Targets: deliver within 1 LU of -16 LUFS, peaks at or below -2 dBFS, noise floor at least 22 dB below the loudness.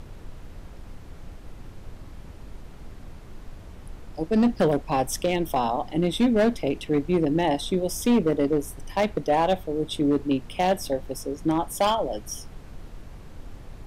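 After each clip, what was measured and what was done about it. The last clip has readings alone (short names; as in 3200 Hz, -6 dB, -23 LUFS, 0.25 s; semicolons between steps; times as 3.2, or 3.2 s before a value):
clipped 1.4%; flat tops at -15.0 dBFS; noise floor -44 dBFS; noise floor target -47 dBFS; loudness -24.5 LUFS; peak -15.0 dBFS; loudness target -16.0 LUFS
-> clip repair -15 dBFS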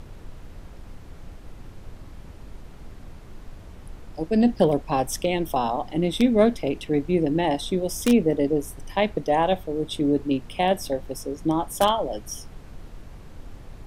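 clipped 0.0%; noise floor -44 dBFS; noise floor target -46 dBFS
-> noise print and reduce 6 dB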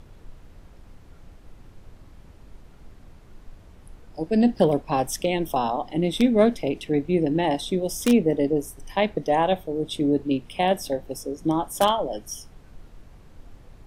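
noise floor -49 dBFS; loudness -23.5 LUFS; peak -6.0 dBFS; loudness target -16.0 LUFS
-> gain +7.5 dB; limiter -2 dBFS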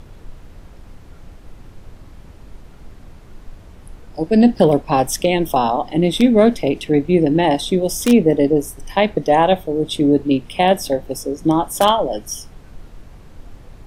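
loudness -16.5 LUFS; peak -2.0 dBFS; noise floor -42 dBFS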